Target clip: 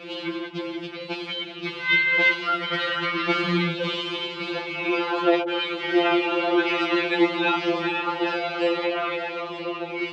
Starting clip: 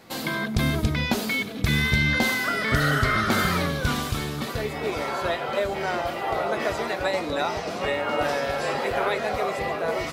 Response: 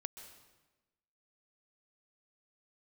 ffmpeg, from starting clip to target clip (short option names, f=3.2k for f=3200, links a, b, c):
-filter_complex "[0:a]aeval=exprs='val(0)+0.5*0.0266*sgn(val(0))':c=same,aemphasis=mode=production:type=bsi,dynaudnorm=f=210:g=21:m=11.5dB,highpass=120,equalizer=f=130:t=q:w=4:g=-5,equalizer=f=350:t=q:w=4:g=8,equalizer=f=670:t=q:w=4:g=-7,equalizer=f=1.1k:t=q:w=4:g=-5,equalizer=f=1.8k:t=q:w=4:g=-8,equalizer=f=2.8k:t=q:w=4:g=5,lowpass=f=3.1k:w=0.5412,lowpass=f=3.1k:w=1.3066,asettb=1/sr,asplit=3[a][b][c];[a]atrim=end=5.424[d];[b]atrim=start=5.42:end=7.7,asetpts=PTS-STARTPTS,afade=t=in:d=0.004:c=qsin,afade=t=out:st=2.276:d=0.004:c=qsin,acrossover=split=160|740[e][f][g];[g]adelay=70[h];[e]adelay=300[i];[i][f][h]amix=inputs=3:normalize=0,atrim=end_sample=100548[j];[c]atrim=start=7.696[k];[d][j]acrossfade=d=0.004:c1=hsin:c2=qsin[l];[l][k]acrossfade=d=0.004:c1=qsin:c2=hsin,afftfilt=real='re*2.83*eq(mod(b,8),0)':imag='im*2.83*eq(mod(b,8),0)':win_size=2048:overlap=0.75"